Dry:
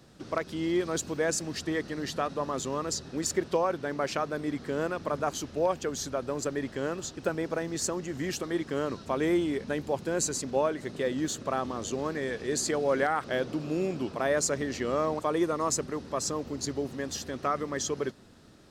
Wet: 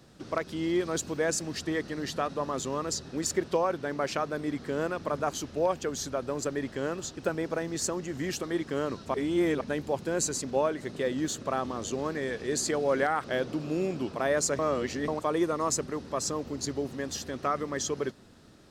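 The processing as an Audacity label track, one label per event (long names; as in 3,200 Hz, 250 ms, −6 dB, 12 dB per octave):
9.140000	9.610000	reverse
14.590000	15.080000	reverse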